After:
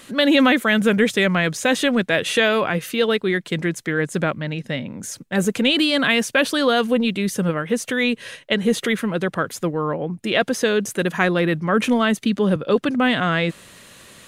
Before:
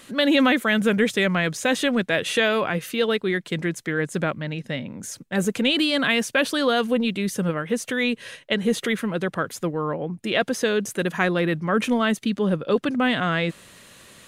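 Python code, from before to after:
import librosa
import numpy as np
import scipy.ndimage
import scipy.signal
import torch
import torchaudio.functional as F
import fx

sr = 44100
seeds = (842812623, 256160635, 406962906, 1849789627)

y = fx.band_squash(x, sr, depth_pct=40, at=(11.84, 12.56))
y = y * librosa.db_to_amplitude(3.0)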